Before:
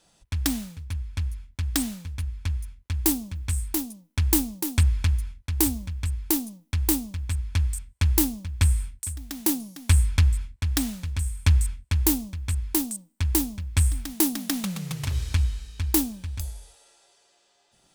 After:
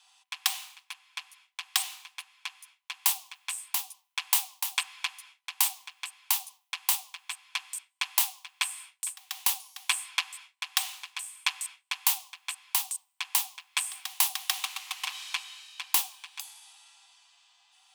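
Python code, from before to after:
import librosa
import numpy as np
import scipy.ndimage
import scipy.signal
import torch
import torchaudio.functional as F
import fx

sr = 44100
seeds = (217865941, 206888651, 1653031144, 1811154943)

y = scipy.signal.sosfilt(scipy.signal.cheby1(6, 9, 740.0, 'highpass', fs=sr, output='sos'), x)
y = y * 10.0 ** (7.5 / 20.0)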